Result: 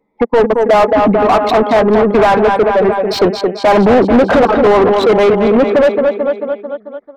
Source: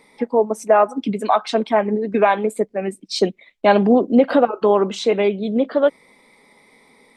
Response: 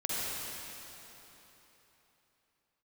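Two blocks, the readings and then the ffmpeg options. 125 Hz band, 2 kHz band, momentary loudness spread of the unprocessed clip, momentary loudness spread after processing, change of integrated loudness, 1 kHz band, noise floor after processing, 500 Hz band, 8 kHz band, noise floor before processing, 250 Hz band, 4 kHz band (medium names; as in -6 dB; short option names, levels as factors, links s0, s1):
+9.5 dB, +9.0 dB, 8 LU, 6 LU, +7.5 dB, +8.0 dB, -45 dBFS, +8.5 dB, no reading, -55 dBFS, +6.5 dB, +6.5 dB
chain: -filter_complex "[0:a]anlmdn=251,aecho=1:1:221|442|663|884|1105|1326:0.266|0.149|0.0834|0.0467|0.0262|0.0147,asplit=2[s0][s1];[s1]highpass=f=720:p=1,volume=35.5,asoftclip=type=tanh:threshold=0.944[s2];[s0][s2]amix=inputs=2:normalize=0,lowpass=f=1100:p=1,volume=0.501"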